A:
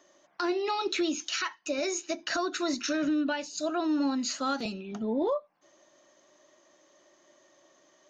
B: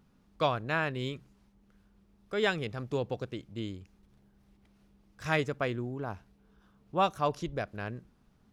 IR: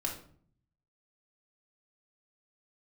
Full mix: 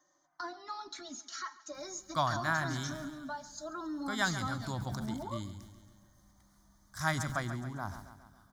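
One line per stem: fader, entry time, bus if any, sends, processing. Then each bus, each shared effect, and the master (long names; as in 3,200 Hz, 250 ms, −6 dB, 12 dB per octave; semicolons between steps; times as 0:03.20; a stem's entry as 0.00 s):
−3.0 dB, 0.00 s, no send, echo send −19 dB, barber-pole flanger 3.4 ms −0.49 Hz
−0.5 dB, 1.75 s, no send, echo send −11.5 dB, high-shelf EQ 2,700 Hz +11 dB; level that may fall only so fast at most 100 dB per second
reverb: not used
echo: repeating echo 138 ms, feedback 56%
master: phaser with its sweep stopped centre 1,100 Hz, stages 4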